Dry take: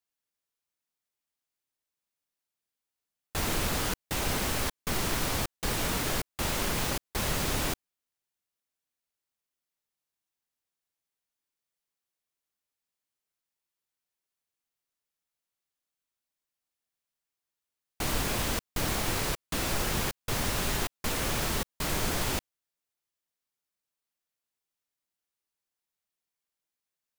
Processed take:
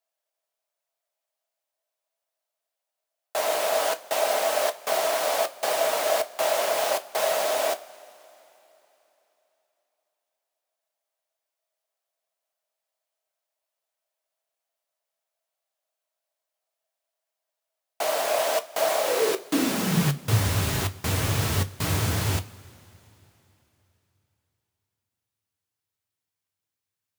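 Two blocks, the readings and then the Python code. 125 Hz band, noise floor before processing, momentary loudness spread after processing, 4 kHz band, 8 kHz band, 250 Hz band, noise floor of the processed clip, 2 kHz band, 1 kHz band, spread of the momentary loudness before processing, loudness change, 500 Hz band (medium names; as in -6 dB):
+7.5 dB, under -85 dBFS, 4 LU, +2.5 dB, +2.5 dB, +4.0 dB, under -85 dBFS, +3.0 dB, +7.5 dB, 3 LU, +5.5 dB, +12.5 dB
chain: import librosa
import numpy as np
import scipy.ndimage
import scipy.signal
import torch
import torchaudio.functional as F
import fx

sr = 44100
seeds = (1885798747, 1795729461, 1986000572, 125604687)

y = fx.rider(x, sr, range_db=10, speed_s=0.5)
y = fx.filter_sweep_highpass(y, sr, from_hz=630.0, to_hz=95.0, start_s=18.96, end_s=20.43, q=7.6)
y = fx.rev_double_slope(y, sr, seeds[0], early_s=0.21, late_s=3.5, knee_db=-22, drr_db=8.5)
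y = y * librosa.db_to_amplitude(2.0)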